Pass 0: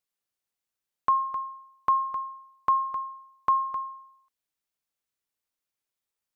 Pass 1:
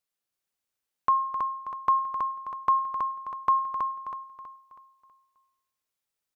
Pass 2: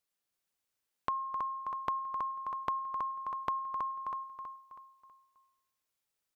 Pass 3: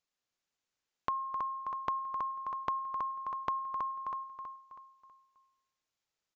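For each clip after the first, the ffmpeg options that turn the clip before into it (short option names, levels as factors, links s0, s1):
-af "aecho=1:1:323|646|969|1292|1615:0.631|0.252|0.101|0.0404|0.0162"
-af "acompressor=threshold=0.02:ratio=4"
-af "aresample=16000,aresample=44100"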